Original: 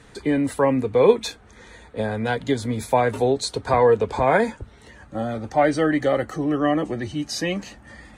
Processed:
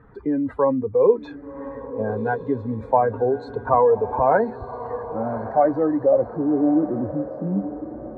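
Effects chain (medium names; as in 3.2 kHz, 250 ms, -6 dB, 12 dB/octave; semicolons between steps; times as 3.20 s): spectral contrast enhancement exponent 1.6; low-pass sweep 1.2 kHz -> 210 Hz, 5.59–7.28 s; on a send: echo that smears into a reverb 1134 ms, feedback 42%, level -12.5 dB; on the sum: trim -2 dB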